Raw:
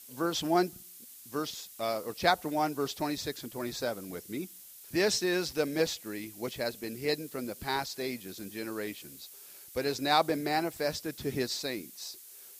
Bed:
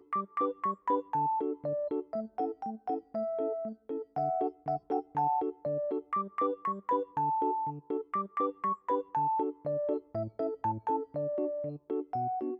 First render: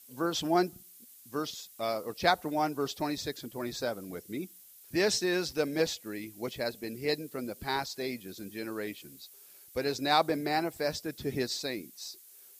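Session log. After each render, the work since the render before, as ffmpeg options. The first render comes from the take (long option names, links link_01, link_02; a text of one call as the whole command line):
ffmpeg -i in.wav -af "afftdn=noise_reduction=6:noise_floor=-51" out.wav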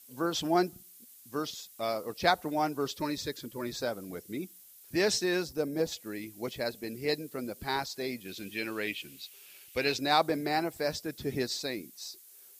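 ffmpeg -i in.wav -filter_complex "[0:a]asettb=1/sr,asplit=3[link_01][link_02][link_03];[link_01]atrim=end=2.864[link_04];[link_02]atrim=start=2.86:end=3.73,asetpts=PTS-STARTPTS,afade=type=in:duration=0.004:curve=qsin,afade=type=out:start_time=0.866:duration=0.004:curve=qsin,asuperstop=centerf=720:order=8:qfactor=3.4[link_05];[link_03]atrim=start=3.726[link_06];[link_04][link_05]acrossfade=duration=0.004:curve1=hsin:curve2=qsin[link_07];[link_07][link_06]acrossfade=duration=0.004:curve1=qsin:curve2=hsin,asplit=3[link_08][link_09][link_10];[link_08]afade=type=out:start_time=5.42:duration=0.02[link_11];[link_09]equalizer=frequency=2700:width_type=o:width=2.4:gain=-11.5,afade=type=in:start_time=5.42:duration=0.02,afade=type=out:start_time=5.91:duration=0.02[link_12];[link_10]afade=type=in:start_time=5.91:duration=0.02[link_13];[link_11][link_12][link_13]amix=inputs=3:normalize=0,asettb=1/sr,asplit=3[link_14][link_15][link_16];[link_14]atrim=end=8.254[link_17];[link_15]atrim=start=8.25:end=9.99,asetpts=PTS-STARTPTS,afade=type=in:duration=0.004:curve=qsin,afade=type=out:start_time=1.736:duration=0.004:curve=qsin,equalizer=frequency=2700:width_type=o:width=0.96:gain=14[link_18];[link_16]atrim=start=9.986[link_19];[link_17][link_18]acrossfade=duration=0.004:curve1=hsin:curve2=qsin[link_20];[link_20][link_19]acrossfade=duration=0.004:curve1=qsin:curve2=hsin" out.wav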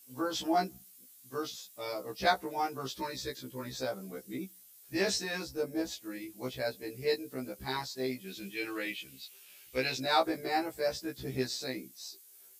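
ffmpeg -i in.wav -af "afftfilt=real='re*1.73*eq(mod(b,3),0)':imag='im*1.73*eq(mod(b,3),0)':win_size=2048:overlap=0.75" out.wav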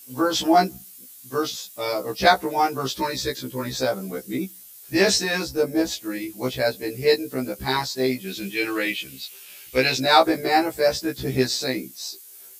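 ffmpeg -i in.wav -af "volume=12dB,alimiter=limit=-3dB:level=0:latency=1" out.wav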